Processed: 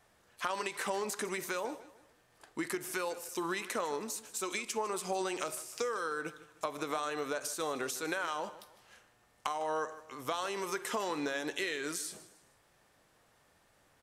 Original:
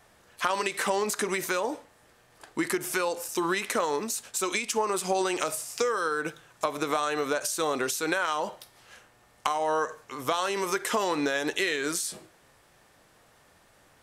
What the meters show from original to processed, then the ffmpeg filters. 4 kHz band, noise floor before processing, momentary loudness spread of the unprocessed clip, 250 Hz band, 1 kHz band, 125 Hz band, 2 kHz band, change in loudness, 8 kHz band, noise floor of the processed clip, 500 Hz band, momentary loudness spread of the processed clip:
-8.0 dB, -61 dBFS, 6 LU, -8.0 dB, -8.0 dB, -8.0 dB, -8.0 dB, -8.0 dB, -8.0 dB, -69 dBFS, -8.0 dB, 6 LU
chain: -af "aecho=1:1:154|308|462:0.15|0.0554|0.0205,volume=-8dB"

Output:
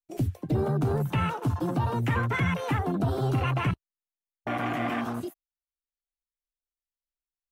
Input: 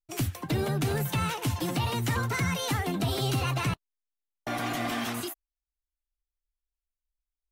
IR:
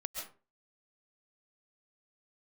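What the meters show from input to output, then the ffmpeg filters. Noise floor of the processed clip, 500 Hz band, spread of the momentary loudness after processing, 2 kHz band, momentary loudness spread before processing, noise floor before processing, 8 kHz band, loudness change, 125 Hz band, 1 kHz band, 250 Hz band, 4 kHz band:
under -85 dBFS, +2.5 dB, 8 LU, 0.0 dB, 8 LU, under -85 dBFS, under -10 dB, +1.5 dB, +2.5 dB, +2.0 dB, +2.5 dB, -8.0 dB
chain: -af "afwtdn=0.0224,volume=2.5dB"

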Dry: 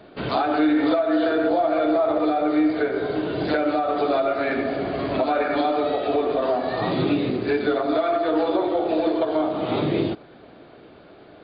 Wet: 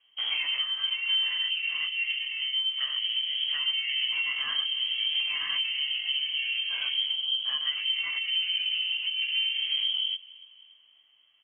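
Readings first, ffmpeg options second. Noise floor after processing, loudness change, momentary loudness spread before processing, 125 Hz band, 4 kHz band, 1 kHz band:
-61 dBFS, -4.0 dB, 5 LU, under -35 dB, +15.0 dB, -26.0 dB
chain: -filter_complex "[0:a]afwtdn=0.0282,equalizer=f=250:t=o:w=0.33:g=11,equalizer=f=500:t=o:w=0.33:g=-7,equalizer=f=800:t=o:w=0.33:g=-7,equalizer=f=1.6k:t=o:w=0.33:g=-4,acompressor=threshold=-23dB:ratio=6,flanger=delay=16.5:depth=4.8:speed=0.24,asplit=2[a][b];[b]adelay=286,lowpass=f=2k:p=1,volume=-21dB,asplit=2[c][d];[d]adelay=286,lowpass=f=2k:p=1,volume=0.53,asplit=2[e][f];[f]adelay=286,lowpass=f=2k:p=1,volume=0.53,asplit=2[g][h];[h]adelay=286,lowpass=f=2k:p=1,volume=0.53[i];[a][c][e][g][i]amix=inputs=5:normalize=0,lowpass=f=2.9k:t=q:w=0.5098,lowpass=f=2.9k:t=q:w=0.6013,lowpass=f=2.9k:t=q:w=0.9,lowpass=f=2.9k:t=q:w=2.563,afreqshift=-3400"

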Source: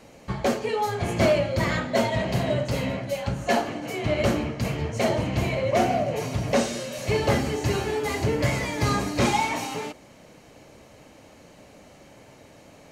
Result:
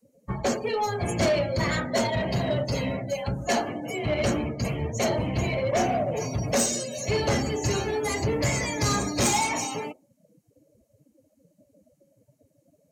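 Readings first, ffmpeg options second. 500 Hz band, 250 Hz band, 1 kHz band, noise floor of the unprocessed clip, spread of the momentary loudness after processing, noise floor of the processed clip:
-2.0 dB, -1.5 dB, -2.0 dB, -51 dBFS, 6 LU, -68 dBFS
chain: -filter_complex "[0:a]afftdn=nr=33:nf=-37,acrossover=split=390|4400[a][b][c];[c]crystalizer=i=3.5:c=0[d];[a][b][d]amix=inputs=3:normalize=0,asoftclip=type=tanh:threshold=-17.5dB,crystalizer=i=1:c=0"

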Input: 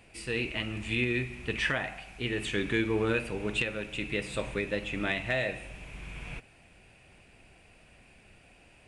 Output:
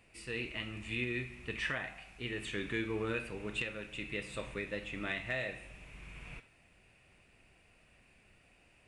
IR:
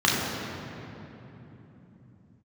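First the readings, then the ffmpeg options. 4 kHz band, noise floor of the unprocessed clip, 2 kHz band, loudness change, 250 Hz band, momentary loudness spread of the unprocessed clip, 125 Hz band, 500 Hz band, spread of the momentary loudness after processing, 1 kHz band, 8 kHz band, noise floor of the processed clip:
-7.0 dB, -59 dBFS, -6.0 dB, -7.0 dB, -8.0 dB, 14 LU, -8.0 dB, -8.0 dB, 14 LU, -7.5 dB, -7.0 dB, -66 dBFS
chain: -filter_complex "[0:a]asplit=2[a][b];[b]highpass=820[c];[1:a]atrim=start_sample=2205,afade=t=out:st=0.15:d=0.01,atrim=end_sample=7056[d];[c][d]afir=irnorm=-1:irlink=0,volume=-23dB[e];[a][e]amix=inputs=2:normalize=0,volume=-8dB"

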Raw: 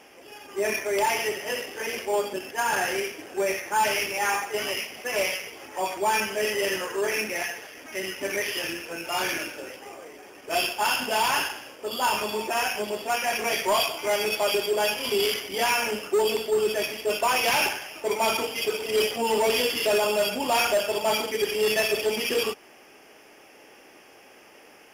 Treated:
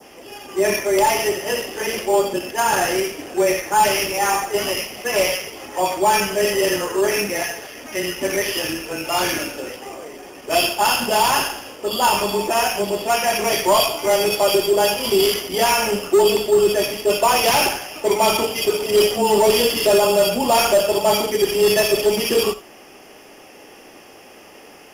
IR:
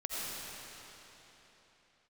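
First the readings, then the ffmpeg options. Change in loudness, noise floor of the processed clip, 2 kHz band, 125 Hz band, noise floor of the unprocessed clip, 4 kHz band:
+7.0 dB, -44 dBFS, +3.0 dB, +12.0 dB, -52 dBFS, +6.0 dB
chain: -filter_complex "[0:a]adynamicequalizer=threshold=0.0126:dfrequency=2600:dqfactor=0.99:tfrequency=2600:tqfactor=0.99:attack=5:release=100:ratio=0.375:range=2:mode=cutabove:tftype=bell,afreqshift=-14,asplit=2[a][b];[b]asuperstop=centerf=1900:order=12:qfactor=4[c];[1:a]atrim=start_sample=2205,atrim=end_sample=3969,lowshelf=f=170:g=9.5[d];[c][d]afir=irnorm=-1:irlink=0,volume=-5dB[e];[a][e]amix=inputs=2:normalize=0,volume=5.5dB"

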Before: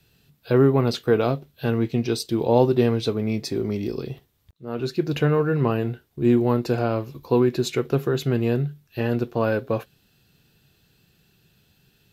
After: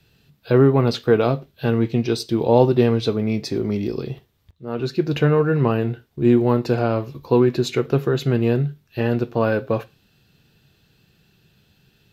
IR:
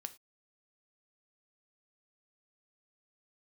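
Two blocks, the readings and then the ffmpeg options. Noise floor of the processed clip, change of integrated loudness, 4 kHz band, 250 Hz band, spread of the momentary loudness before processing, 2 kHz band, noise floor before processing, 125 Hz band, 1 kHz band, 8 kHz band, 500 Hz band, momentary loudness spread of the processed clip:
-62 dBFS, +3.0 dB, +2.0 dB, +3.0 dB, 10 LU, +2.5 dB, -64 dBFS, +3.5 dB, +3.0 dB, n/a, +3.0 dB, 10 LU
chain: -filter_complex "[0:a]asplit=2[a][b];[1:a]atrim=start_sample=2205,lowpass=6.7k[c];[b][c]afir=irnorm=-1:irlink=0,volume=2.5dB[d];[a][d]amix=inputs=2:normalize=0,volume=-2.5dB"

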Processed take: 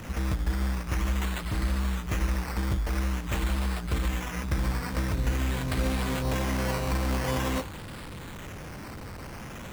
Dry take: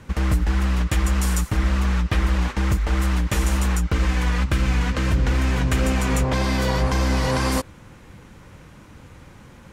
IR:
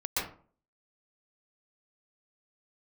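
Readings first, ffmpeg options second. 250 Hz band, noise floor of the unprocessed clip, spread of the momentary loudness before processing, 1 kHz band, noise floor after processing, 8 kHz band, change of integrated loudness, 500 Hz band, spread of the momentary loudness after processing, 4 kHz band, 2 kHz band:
-7.0 dB, -46 dBFS, 1 LU, -6.5 dB, -40 dBFS, -8.0 dB, -7.5 dB, -6.5 dB, 12 LU, -7.0 dB, -7.0 dB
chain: -af "aeval=exprs='val(0)+0.5*0.0422*sgn(val(0))':c=same,bandreject=f=60.66:t=h:w=4,bandreject=f=121.32:t=h:w=4,bandreject=f=181.98:t=h:w=4,bandreject=f=242.64:t=h:w=4,bandreject=f=303.3:t=h:w=4,bandreject=f=363.96:t=h:w=4,bandreject=f=424.62:t=h:w=4,bandreject=f=485.28:t=h:w=4,bandreject=f=545.94:t=h:w=4,bandreject=f=606.6:t=h:w=4,bandreject=f=667.26:t=h:w=4,bandreject=f=727.92:t=h:w=4,bandreject=f=788.58:t=h:w=4,bandreject=f=849.24:t=h:w=4,bandreject=f=909.9:t=h:w=4,bandreject=f=970.56:t=h:w=4,bandreject=f=1.03122k:t=h:w=4,bandreject=f=1.09188k:t=h:w=4,bandreject=f=1.15254k:t=h:w=4,bandreject=f=1.2132k:t=h:w=4,bandreject=f=1.27386k:t=h:w=4,bandreject=f=1.33452k:t=h:w=4,bandreject=f=1.39518k:t=h:w=4,bandreject=f=1.45584k:t=h:w=4,bandreject=f=1.5165k:t=h:w=4,bandreject=f=1.57716k:t=h:w=4,bandreject=f=1.63782k:t=h:w=4,bandreject=f=1.69848k:t=h:w=4,acrusher=samples=10:mix=1:aa=0.000001:lfo=1:lforange=6:lforate=0.47,volume=-8dB"

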